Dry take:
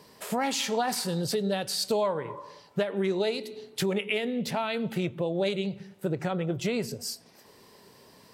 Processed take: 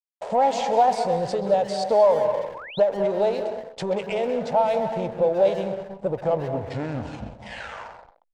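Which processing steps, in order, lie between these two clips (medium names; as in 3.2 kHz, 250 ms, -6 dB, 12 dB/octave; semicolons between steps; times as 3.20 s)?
tape stop on the ending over 2.27 s; treble shelf 2.3 kHz -3.5 dB; reverberation RT60 0.70 s, pre-delay 179 ms, DRR 8 dB; reverse; upward compressor, threshold -47 dBFS; reverse; hysteresis with a dead band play -35.5 dBFS; waveshaping leveller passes 1; steep low-pass 8.6 kHz 36 dB/octave; high-order bell 680 Hz +14.5 dB 1.2 oct; speakerphone echo 130 ms, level -9 dB; painted sound rise, 2.54–2.80 s, 820–4400 Hz -34 dBFS; trim -5 dB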